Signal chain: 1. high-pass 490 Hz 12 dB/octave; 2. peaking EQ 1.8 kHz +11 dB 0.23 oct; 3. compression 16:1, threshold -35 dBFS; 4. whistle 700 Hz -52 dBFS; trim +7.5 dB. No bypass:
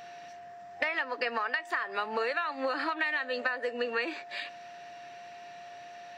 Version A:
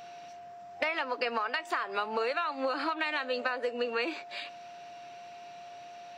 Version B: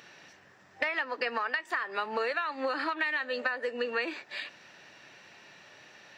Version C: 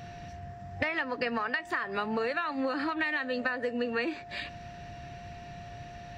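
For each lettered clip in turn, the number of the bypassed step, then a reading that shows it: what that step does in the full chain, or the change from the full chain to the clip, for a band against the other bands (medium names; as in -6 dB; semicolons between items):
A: 2, 2 kHz band -4.0 dB; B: 4, momentary loudness spread change -11 LU; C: 1, 250 Hz band +9.0 dB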